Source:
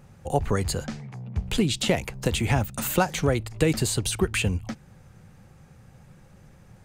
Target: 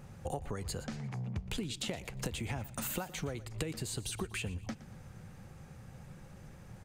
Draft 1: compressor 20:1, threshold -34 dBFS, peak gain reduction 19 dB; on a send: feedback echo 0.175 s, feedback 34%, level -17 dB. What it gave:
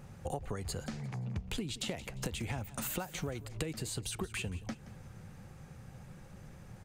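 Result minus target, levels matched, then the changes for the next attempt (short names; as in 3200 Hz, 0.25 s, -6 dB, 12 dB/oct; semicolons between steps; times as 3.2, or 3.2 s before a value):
echo 57 ms late
change: feedback echo 0.118 s, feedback 34%, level -17 dB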